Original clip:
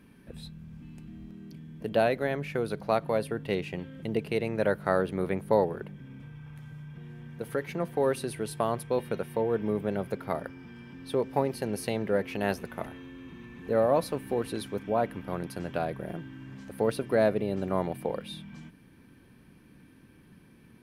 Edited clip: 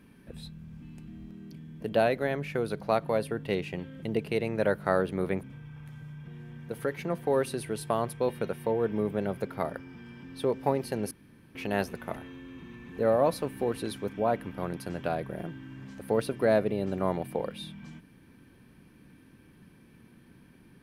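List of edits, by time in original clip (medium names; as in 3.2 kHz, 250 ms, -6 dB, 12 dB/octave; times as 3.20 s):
5.43–6.13 s: delete
11.81–12.25 s: room tone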